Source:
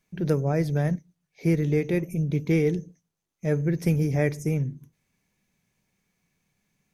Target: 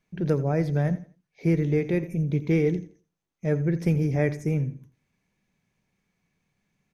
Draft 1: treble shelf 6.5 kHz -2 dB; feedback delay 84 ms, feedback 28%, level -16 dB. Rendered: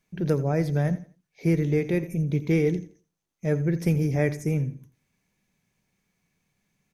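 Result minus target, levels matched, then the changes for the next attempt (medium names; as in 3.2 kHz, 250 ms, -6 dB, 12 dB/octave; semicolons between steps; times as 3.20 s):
8 kHz band +5.5 dB
change: treble shelf 6.5 kHz -12.5 dB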